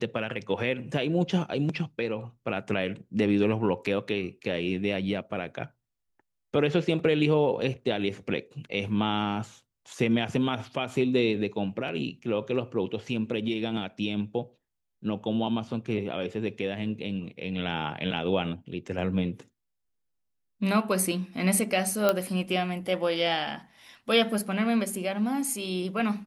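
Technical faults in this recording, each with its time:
0:22.09: click −9 dBFS

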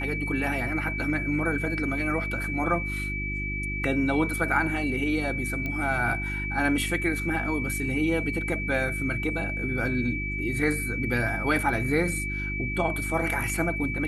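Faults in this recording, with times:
mains hum 50 Hz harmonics 7 −33 dBFS
whistle 2,300 Hz −31 dBFS
0:05.66: click −19 dBFS

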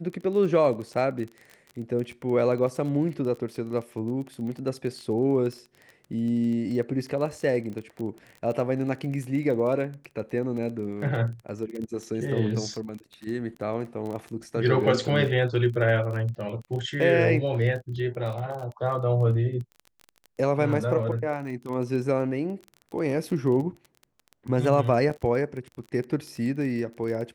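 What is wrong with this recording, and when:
surface crackle 23 per second −33 dBFS

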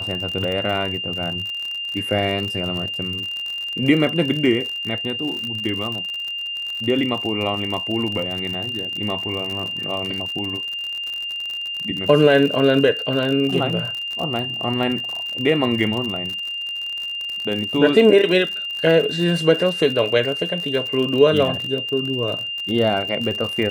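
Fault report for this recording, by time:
surface crackle 59 per second −25 dBFS
whistle 2,800 Hz −25 dBFS

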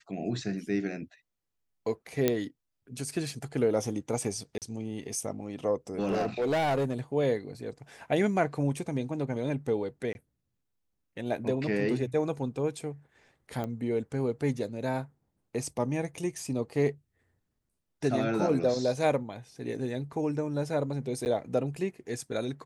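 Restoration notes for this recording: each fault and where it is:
0:02.28: click −10 dBFS
0:04.58–0:04.62: drop-out 38 ms
0:05.99–0:07.00: clipping −24 dBFS
0:10.13–0:10.15: drop-out 21 ms
0:13.64: click −22 dBFS
0:21.25–0:21.26: drop-out 9.7 ms

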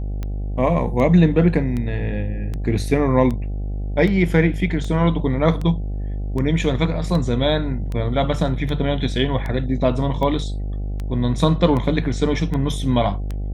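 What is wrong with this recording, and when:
mains buzz 50 Hz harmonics 16 −25 dBFS
scratch tick 78 rpm −16 dBFS

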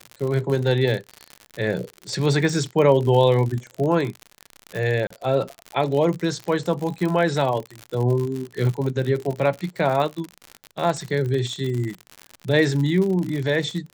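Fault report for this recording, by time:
surface crackle 72 per second −26 dBFS
0:05.07–0:05.10: drop-out 34 ms

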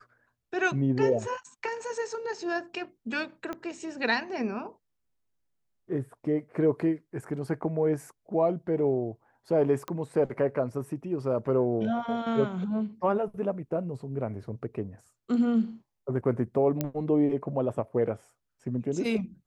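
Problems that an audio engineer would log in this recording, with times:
0:03.53: click −22 dBFS
0:09.88: click −21 dBFS
0:16.81: click −13 dBFS

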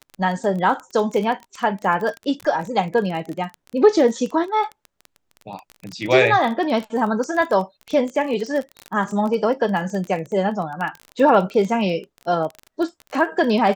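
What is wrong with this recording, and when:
surface crackle 22 per second −25 dBFS

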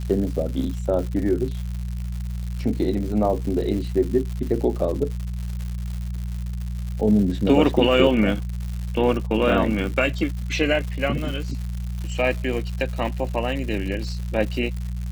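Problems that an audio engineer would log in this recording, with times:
surface crackle 200 per second −30 dBFS
mains hum 60 Hz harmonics 3 −28 dBFS

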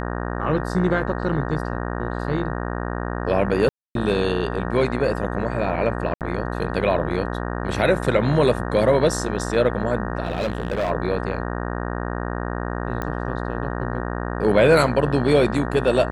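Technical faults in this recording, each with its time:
mains buzz 60 Hz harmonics 31 −27 dBFS
0:03.69–0:03.95: drop-out 262 ms
0:06.14–0:06.21: drop-out 68 ms
0:10.25–0:10.91: clipping −19 dBFS
0:13.02: click −14 dBFS

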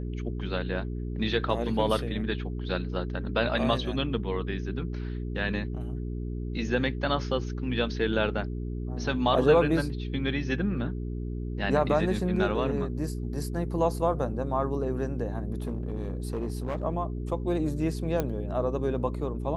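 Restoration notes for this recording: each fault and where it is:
mains hum 60 Hz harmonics 7 −33 dBFS
0:15.53–0:16.84: clipping −26 dBFS
0:18.20: click −14 dBFS

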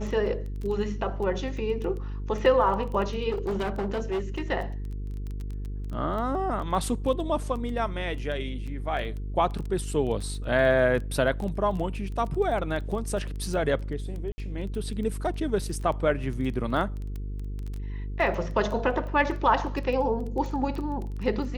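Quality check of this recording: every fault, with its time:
mains buzz 50 Hz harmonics 9 −33 dBFS
surface crackle 12 per second −32 dBFS
0:03.29–0:04.42: clipping −24.5 dBFS
0:14.32–0:14.38: drop-out 60 ms

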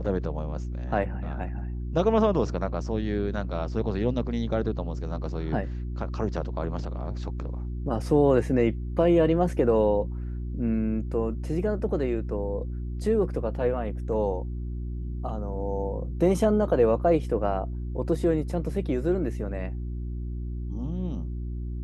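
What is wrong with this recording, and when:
mains hum 60 Hz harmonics 6 −32 dBFS

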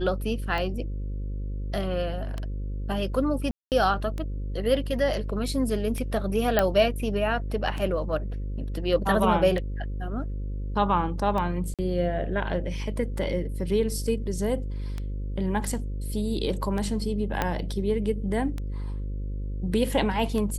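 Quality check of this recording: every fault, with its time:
mains buzz 50 Hz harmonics 11 −31 dBFS
scratch tick 33 1/3 rpm −19 dBFS
0:03.51–0:03.72: drop-out 208 ms
0:06.59: click −7 dBFS
0:11.74–0:11.79: drop-out 47 ms
0:17.42: click −10 dBFS

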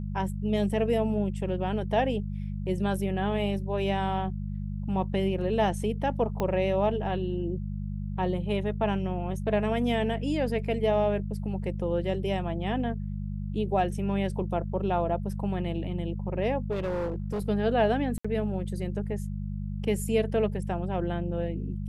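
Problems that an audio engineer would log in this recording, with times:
mains hum 50 Hz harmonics 4 −33 dBFS
0:06.40: click −16 dBFS
0:16.71–0:17.49: clipping −26.5 dBFS
0:18.18–0:18.25: drop-out 65 ms

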